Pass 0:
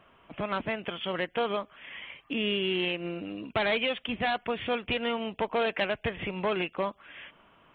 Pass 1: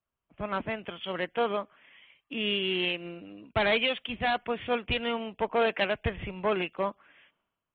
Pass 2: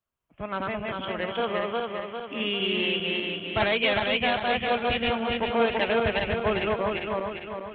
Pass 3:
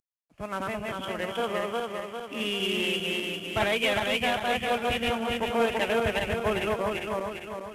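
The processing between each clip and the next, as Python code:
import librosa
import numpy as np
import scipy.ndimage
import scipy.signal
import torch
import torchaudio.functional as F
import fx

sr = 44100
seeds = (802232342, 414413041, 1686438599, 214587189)

y1 = fx.band_widen(x, sr, depth_pct=100)
y2 = fx.reverse_delay_fb(y1, sr, ms=200, feedback_pct=70, wet_db=-1)
y3 = fx.cvsd(y2, sr, bps=64000)
y3 = y3 * librosa.db_to_amplitude(-1.5)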